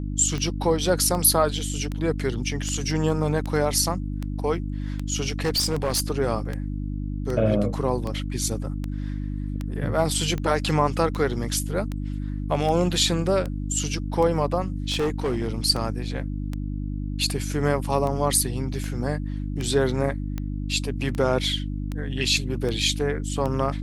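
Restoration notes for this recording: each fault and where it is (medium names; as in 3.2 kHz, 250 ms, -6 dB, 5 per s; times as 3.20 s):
hum 50 Hz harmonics 6 -29 dBFS
tick 78 rpm -17 dBFS
5.28–6.02 s: clipped -19 dBFS
14.90–15.50 s: clipped -20 dBFS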